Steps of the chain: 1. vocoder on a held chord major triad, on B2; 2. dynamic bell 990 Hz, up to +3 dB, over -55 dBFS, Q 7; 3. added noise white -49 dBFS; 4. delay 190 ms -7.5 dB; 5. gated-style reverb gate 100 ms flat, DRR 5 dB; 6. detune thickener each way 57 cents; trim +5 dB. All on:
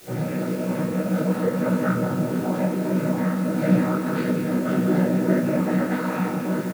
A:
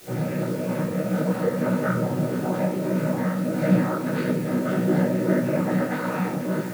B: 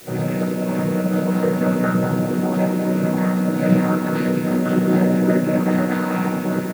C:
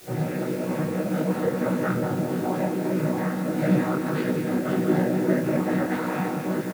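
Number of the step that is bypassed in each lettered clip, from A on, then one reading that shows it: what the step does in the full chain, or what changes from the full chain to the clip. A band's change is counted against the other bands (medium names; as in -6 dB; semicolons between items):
4, loudness change -1.0 LU; 6, loudness change +3.5 LU; 5, 125 Hz band -2.0 dB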